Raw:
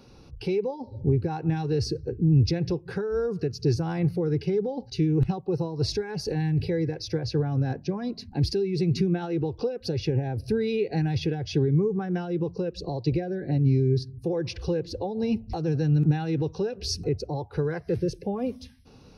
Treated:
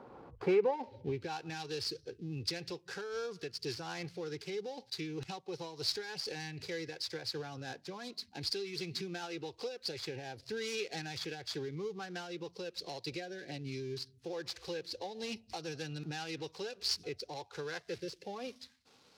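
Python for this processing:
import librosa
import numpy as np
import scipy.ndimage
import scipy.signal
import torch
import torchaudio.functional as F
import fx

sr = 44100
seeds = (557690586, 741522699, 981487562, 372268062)

y = scipy.signal.medfilt(x, 15)
y = fx.filter_sweep_bandpass(y, sr, from_hz=920.0, to_hz=4900.0, start_s=0.33, end_s=1.41, q=1.1)
y = F.gain(torch.from_numpy(y), 9.0).numpy()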